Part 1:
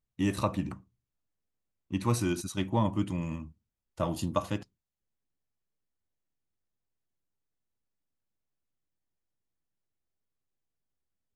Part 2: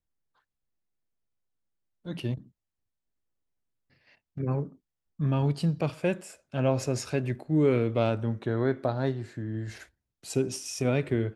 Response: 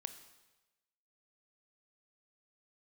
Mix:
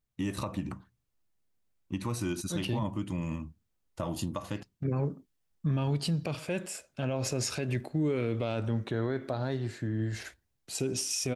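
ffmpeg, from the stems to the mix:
-filter_complex "[0:a]acompressor=threshold=-30dB:ratio=5,volume=2dB[link_01];[1:a]alimiter=limit=-20.5dB:level=0:latency=1:release=122,adynamicequalizer=threshold=0.00398:dfrequency=2000:dqfactor=0.7:tfrequency=2000:tqfactor=0.7:attack=5:release=100:ratio=0.375:range=2.5:mode=boostabove:tftype=highshelf,adelay=450,volume=2dB[link_02];[link_01][link_02]amix=inputs=2:normalize=0,alimiter=limit=-22dB:level=0:latency=1:release=58"

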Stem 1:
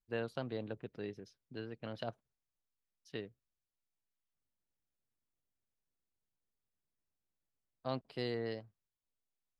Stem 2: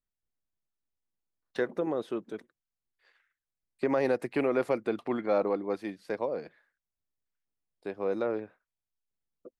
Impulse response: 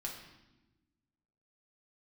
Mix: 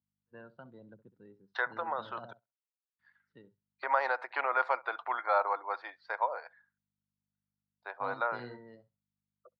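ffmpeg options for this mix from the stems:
-filter_complex "[0:a]aeval=exprs='if(lt(val(0),0),0.708*val(0),val(0))':channel_layout=same,adelay=150,volume=-7dB,asplit=2[link_01][link_02];[link_02]volume=-3.5dB[link_03];[1:a]highpass=frequency=690:width=0.5412,highpass=frequency=690:width=1.3066,aeval=exprs='val(0)+0.000224*(sin(2*PI*50*n/s)+sin(2*PI*2*50*n/s)/2+sin(2*PI*3*50*n/s)/3+sin(2*PI*4*50*n/s)/4+sin(2*PI*5*50*n/s)/5)':channel_layout=same,volume=2.5dB,asplit=3[link_04][link_05][link_06];[link_04]atrim=end=2.33,asetpts=PTS-STARTPTS,afade=type=out:start_time=2.326:duration=0.004:curve=hsin[link_07];[link_05]atrim=start=2.33:end=2.99,asetpts=PTS-STARTPTS,volume=0[link_08];[link_06]atrim=start=2.99,asetpts=PTS-STARTPTS,afade=type=in:duration=0.004:curve=hsin[link_09];[link_07][link_08][link_09]concat=n=3:v=0:a=1,asplit=3[link_10][link_11][link_12];[link_11]volume=-23dB[link_13];[link_12]apad=whole_len=429595[link_14];[link_01][link_14]sidechaingate=range=-33dB:threshold=-59dB:ratio=16:detection=peak[link_15];[link_03][link_13]amix=inputs=2:normalize=0,aecho=0:1:66|132|198|264:1|0.23|0.0529|0.0122[link_16];[link_15][link_10][link_16]amix=inputs=3:normalize=0,afftdn=noise_reduction=15:noise_floor=-56,highpass=frequency=110:width=0.5412,highpass=frequency=110:width=1.3066,equalizer=frequency=190:width_type=q:width=4:gain=5,equalizer=frequency=440:width_type=q:width=4:gain=-4,equalizer=frequency=940:width_type=q:width=4:gain=8,equalizer=frequency=1400:width_type=q:width=4:gain=8,equalizer=frequency=2600:width_type=q:width=4:gain=-7,lowpass=frequency=4600:width=0.5412,lowpass=frequency=4600:width=1.3066"

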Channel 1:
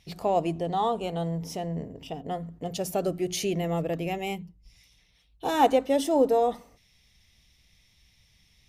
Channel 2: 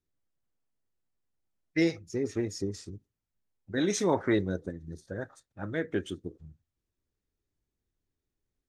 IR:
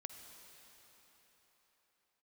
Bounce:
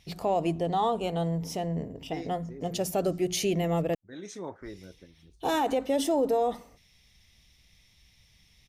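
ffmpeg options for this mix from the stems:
-filter_complex "[0:a]volume=1dB,asplit=3[link_01][link_02][link_03];[link_01]atrim=end=3.95,asetpts=PTS-STARTPTS,afade=type=out:start_time=3.946:duration=0.004:curve=hsin[link_04];[link_02]atrim=start=3.95:end=4.61,asetpts=PTS-STARTPTS,volume=0[link_05];[link_03]atrim=start=4.61,asetpts=PTS-STARTPTS,afade=type=in:duration=0.004:curve=hsin[link_06];[link_04][link_05][link_06]concat=n=3:v=0:a=1,asplit=2[link_07][link_08];[1:a]adelay=350,volume=-7dB,afade=type=out:start_time=4.35:duration=0.31:silence=0.354813[link_09];[link_08]apad=whole_len=398435[link_10];[link_09][link_10]sidechaincompress=threshold=-35dB:ratio=8:attack=16:release=923[link_11];[link_07][link_11]amix=inputs=2:normalize=0,alimiter=limit=-18dB:level=0:latency=1:release=48"

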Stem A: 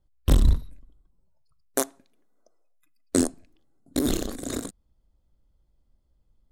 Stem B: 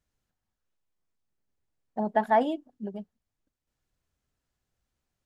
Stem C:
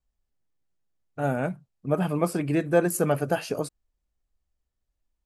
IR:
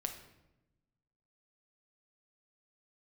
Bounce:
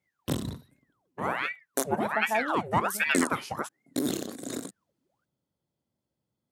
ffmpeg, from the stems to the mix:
-filter_complex "[0:a]bandreject=frequency=1200:width=21,volume=-4dB[link_01];[1:a]volume=-6.5dB[link_02];[2:a]aeval=exprs='val(0)*sin(2*PI*1200*n/s+1200*0.8/1.3*sin(2*PI*1.3*n/s))':channel_layout=same,volume=-1dB[link_03];[link_01][link_02][link_03]amix=inputs=3:normalize=0,highpass=frequency=120:width=0.5412,highpass=frequency=120:width=1.3066"

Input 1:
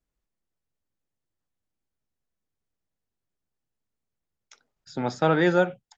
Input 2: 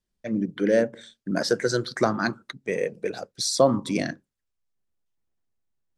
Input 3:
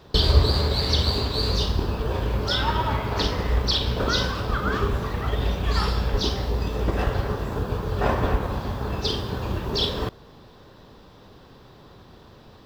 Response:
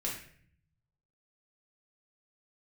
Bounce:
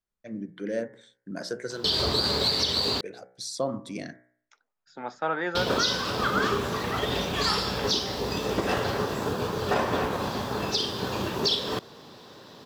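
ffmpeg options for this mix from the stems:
-filter_complex "[0:a]highpass=190,equalizer=frequency=1200:width_type=o:width=2.3:gain=12,volume=-14dB[link_01];[1:a]bandreject=frequency=61.19:width_type=h:width=4,bandreject=frequency=122.38:width_type=h:width=4,bandreject=frequency=183.57:width_type=h:width=4,bandreject=frequency=244.76:width_type=h:width=4,bandreject=frequency=305.95:width_type=h:width=4,bandreject=frequency=367.14:width_type=h:width=4,bandreject=frequency=428.33:width_type=h:width=4,bandreject=frequency=489.52:width_type=h:width=4,bandreject=frequency=550.71:width_type=h:width=4,bandreject=frequency=611.9:width_type=h:width=4,bandreject=frequency=673.09:width_type=h:width=4,bandreject=frequency=734.28:width_type=h:width=4,bandreject=frequency=795.47:width_type=h:width=4,bandreject=frequency=856.66:width_type=h:width=4,bandreject=frequency=917.85:width_type=h:width=4,bandreject=frequency=979.04:width_type=h:width=4,bandreject=frequency=1040.23:width_type=h:width=4,bandreject=frequency=1101.42:width_type=h:width=4,bandreject=frequency=1162.61:width_type=h:width=4,bandreject=frequency=1223.8:width_type=h:width=4,bandreject=frequency=1284.99:width_type=h:width=4,bandreject=frequency=1346.18:width_type=h:width=4,bandreject=frequency=1407.37:width_type=h:width=4,bandreject=frequency=1468.56:width_type=h:width=4,bandreject=frequency=1529.75:width_type=h:width=4,bandreject=frequency=1590.94:width_type=h:width=4,bandreject=frequency=1652.13:width_type=h:width=4,bandreject=frequency=1713.32:width_type=h:width=4,bandreject=frequency=1774.51:width_type=h:width=4,bandreject=frequency=1835.7:width_type=h:width=4,bandreject=frequency=1896.89:width_type=h:width=4,bandreject=frequency=1958.08:width_type=h:width=4,bandreject=frequency=2019.27:width_type=h:width=4,bandreject=frequency=2080.46:width_type=h:width=4,bandreject=frequency=2141.65:width_type=h:width=4,bandreject=frequency=2202.84:width_type=h:width=4,bandreject=frequency=2264.03:width_type=h:width=4,volume=-9.5dB[link_02];[2:a]highpass=170,equalizer=frequency=6900:width_type=o:width=2.1:gain=7.5,adelay=1700,volume=1.5dB,asplit=3[link_03][link_04][link_05];[link_03]atrim=end=3.01,asetpts=PTS-STARTPTS,afade=type=out:start_time=3.006:duration=0.004:curve=hsin[link_06];[link_04]atrim=start=3.01:end=5.55,asetpts=PTS-STARTPTS,volume=0[link_07];[link_05]atrim=start=5.55,asetpts=PTS-STARTPTS,afade=type=in:duration=0.004:curve=hsin[link_08];[link_06][link_07][link_08]concat=n=3:v=0:a=1[link_09];[link_01][link_02][link_09]amix=inputs=3:normalize=0,alimiter=limit=-14dB:level=0:latency=1:release=323"

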